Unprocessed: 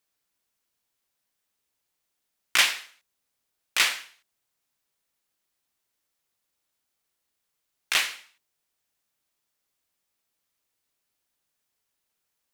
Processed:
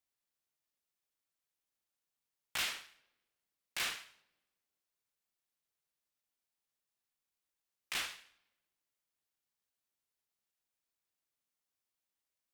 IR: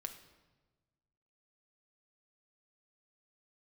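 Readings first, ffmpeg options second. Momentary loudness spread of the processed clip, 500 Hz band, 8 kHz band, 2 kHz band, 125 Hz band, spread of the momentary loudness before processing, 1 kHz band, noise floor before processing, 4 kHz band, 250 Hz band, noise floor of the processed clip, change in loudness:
12 LU, −11.0 dB, −14.0 dB, −15.0 dB, can't be measured, 12 LU, −13.0 dB, −81 dBFS, −14.0 dB, −8.0 dB, below −85 dBFS, −15.0 dB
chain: -filter_complex "[0:a]asoftclip=type=hard:threshold=-21dB,asplit=2[link_01][link_02];[1:a]atrim=start_sample=2205,adelay=62[link_03];[link_02][link_03]afir=irnorm=-1:irlink=0,volume=-12.5dB[link_04];[link_01][link_04]amix=inputs=2:normalize=0,aeval=exprs='val(0)*sin(2*PI*430*n/s+430*0.25/3.6*sin(2*PI*3.6*n/s))':channel_layout=same,volume=-8dB"

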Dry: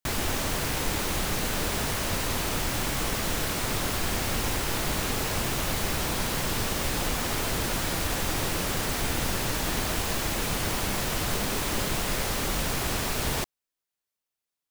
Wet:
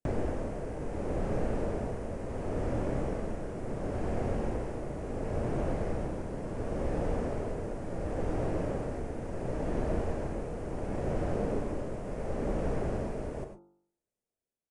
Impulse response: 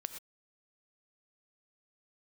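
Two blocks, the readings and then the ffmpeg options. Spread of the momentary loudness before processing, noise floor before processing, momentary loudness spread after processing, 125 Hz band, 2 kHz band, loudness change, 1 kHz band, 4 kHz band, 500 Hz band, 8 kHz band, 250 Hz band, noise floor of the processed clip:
0 LU, below −85 dBFS, 5 LU, −3.0 dB, −17.0 dB, −7.5 dB, −9.0 dB, −27.5 dB, 0.0 dB, −26.5 dB, −2.0 dB, below −85 dBFS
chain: -filter_complex "[0:a]acrossover=split=630|1700[link_01][link_02][link_03];[link_01]acompressor=threshold=-37dB:ratio=4[link_04];[link_02]acompressor=threshold=-38dB:ratio=4[link_05];[link_03]acompressor=threshold=-44dB:ratio=4[link_06];[link_04][link_05][link_06]amix=inputs=3:normalize=0,bandreject=frequency=48.97:width_type=h:width=4,bandreject=frequency=97.94:width_type=h:width=4,bandreject=frequency=146.91:width_type=h:width=4,bandreject=frequency=195.88:width_type=h:width=4,bandreject=frequency=244.85:width_type=h:width=4,bandreject=frequency=293.82:width_type=h:width=4,bandreject=frequency=342.79:width_type=h:width=4,bandreject=frequency=391.76:width_type=h:width=4,bandreject=frequency=440.73:width_type=h:width=4,bandreject=frequency=489.7:width_type=h:width=4,bandreject=frequency=538.67:width_type=h:width=4,bandreject=frequency=587.64:width_type=h:width=4,bandreject=frequency=636.61:width_type=h:width=4,bandreject=frequency=685.58:width_type=h:width=4,bandreject=frequency=734.55:width_type=h:width=4,bandreject=frequency=783.52:width_type=h:width=4,bandreject=frequency=832.49:width_type=h:width=4,bandreject=frequency=881.46:width_type=h:width=4,bandreject=frequency=930.43:width_type=h:width=4,bandreject=frequency=979.4:width_type=h:width=4,bandreject=frequency=1028.37:width_type=h:width=4,bandreject=frequency=1077.34:width_type=h:width=4,bandreject=frequency=1126.31:width_type=h:width=4,bandreject=frequency=1175.28:width_type=h:width=4,bandreject=frequency=1224.25:width_type=h:width=4,bandreject=frequency=1273.22:width_type=h:width=4,bandreject=frequency=1322.19:width_type=h:width=4,bandreject=frequency=1371.16:width_type=h:width=4,bandreject=frequency=1420.13:width_type=h:width=4,bandreject=frequency=1469.1:width_type=h:width=4,bandreject=frequency=1518.07:width_type=h:width=4,tremolo=f=0.71:d=0.53,aresample=22050,aresample=44100,equalizer=frequency=3800:width_type=o:width=1:gain=-12.5,acrossover=split=5000[link_07][link_08];[link_08]acompressor=threshold=-60dB:ratio=4:attack=1:release=60[link_09];[link_07][link_09]amix=inputs=2:normalize=0,lowshelf=frequency=760:width_type=q:width=1.5:gain=11,asplit=2[link_10][link_11];[link_11]adelay=35,volume=-13.5dB[link_12];[link_10][link_12]amix=inputs=2:normalize=0[link_13];[1:a]atrim=start_sample=2205,asetrate=48510,aresample=44100[link_14];[link_13][link_14]afir=irnorm=-1:irlink=0,volume=-1dB"

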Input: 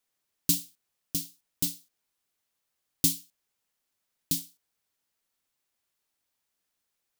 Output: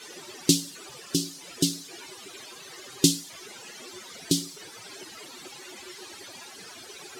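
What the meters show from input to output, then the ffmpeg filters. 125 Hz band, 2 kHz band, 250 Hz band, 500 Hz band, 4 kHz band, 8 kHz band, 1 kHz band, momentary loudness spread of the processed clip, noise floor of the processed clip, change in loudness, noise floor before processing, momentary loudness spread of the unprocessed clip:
+8.0 dB, +13.5 dB, +11.0 dB, +19.0 dB, +8.5 dB, +4.5 dB, can't be measured, 18 LU, −46 dBFS, +2.5 dB, −82 dBFS, 19 LU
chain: -af "aeval=exprs='val(0)+0.5*0.0266*sgn(val(0))':channel_layout=same,afftdn=noise_reduction=17:noise_floor=-40,highpass=130,lowpass=6700,equalizer=frequency=370:width=4.8:gain=14,volume=8dB"

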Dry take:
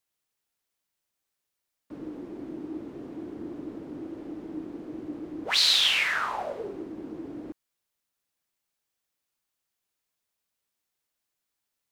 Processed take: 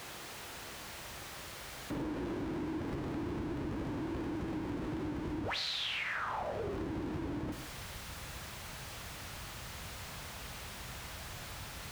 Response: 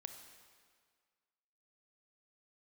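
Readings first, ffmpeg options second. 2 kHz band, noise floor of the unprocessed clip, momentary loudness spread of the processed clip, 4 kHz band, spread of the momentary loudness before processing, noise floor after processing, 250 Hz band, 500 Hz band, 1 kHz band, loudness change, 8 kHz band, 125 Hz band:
−8.5 dB, −84 dBFS, 9 LU, −13.5 dB, 20 LU, −47 dBFS, −0.5 dB, −1.5 dB, −3.5 dB, −13.0 dB, −6.5 dB, +10.5 dB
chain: -filter_complex "[0:a]aeval=exprs='val(0)+0.5*0.0282*sgn(val(0))':channel_layout=same,highpass=49[link_01];[1:a]atrim=start_sample=2205,atrim=end_sample=6615[link_02];[link_01][link_02]afir=irnorm=-1:irlink=0,asubboost=boost=6:cutoff=120,lowpass=frequency=2000:poles=1,acompressor=threshold=-39dB:ratio=6,volume=4.5dB"

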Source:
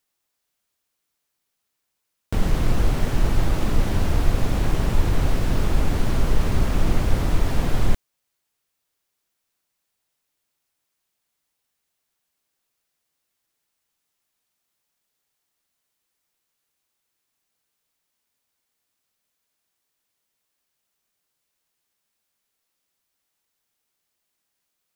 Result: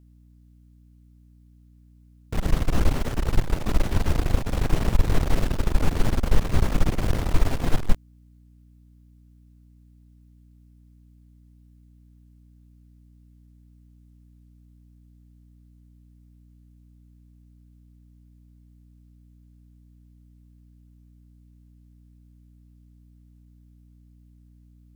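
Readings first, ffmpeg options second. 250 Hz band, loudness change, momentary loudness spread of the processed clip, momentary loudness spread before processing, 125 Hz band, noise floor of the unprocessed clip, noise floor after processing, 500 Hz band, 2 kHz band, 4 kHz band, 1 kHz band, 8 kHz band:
−2.0 dB, −2.0 dB, 4 LU, 2 LU, −2.0 dB, −78 dBFS, −54 dBFS, −2.0 dB, −2.0 dB, −2.0 dB, −2.0 dB, −2.0 dB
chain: -af "aeval=exprs='val(0)+0.00398*(sin(2*PI*60*n/s)+sin(2*PI*2*60*n/s)/2+sin(2*PI*3*60*n/s)/3+sin(2*PI*4*60*n/s)/4+sin(2*PI*5*60*n/s)/5)':channel_layout=same,aeval=exprs='0.631*(cos(1*acos(clip(val(0)/0.631,-1,1)))-cos(1*PI/2))+0.158*(cos(4*acos(clip(val(0)/0.631,-1,1)))-cos(4*PI/2))':channel_layout=same,volume=-3.5dB"

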